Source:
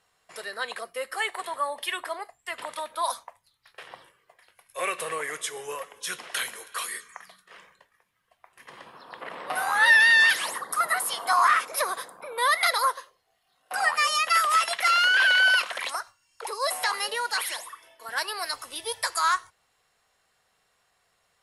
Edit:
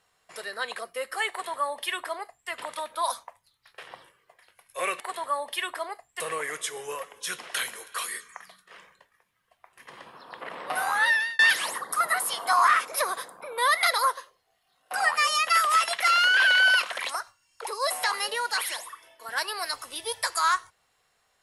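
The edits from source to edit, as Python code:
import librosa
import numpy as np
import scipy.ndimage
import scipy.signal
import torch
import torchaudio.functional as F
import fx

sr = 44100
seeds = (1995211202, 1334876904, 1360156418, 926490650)

y = fx.edit(x, sr, fx.duplicate(start_s=1.3, length_s=1.2, to_s=5.0),
    fx.fade_out_span(start_s=9.67, length_s=0.52), tone=tone)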